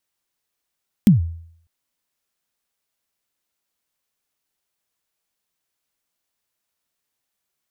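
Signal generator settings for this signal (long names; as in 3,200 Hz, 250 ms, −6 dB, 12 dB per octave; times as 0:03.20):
synth kick length 0.60 s, from 230 Hz, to 83 Hz, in 135 ms, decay 0.63 s, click on, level −5 dB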